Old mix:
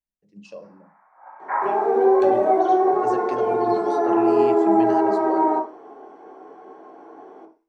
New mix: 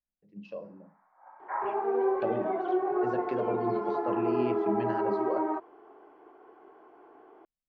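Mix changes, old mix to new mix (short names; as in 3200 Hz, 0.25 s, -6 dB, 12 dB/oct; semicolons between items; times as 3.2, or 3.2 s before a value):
first sound -8.0 dB; second sound: send off; master: add air absorption 320 m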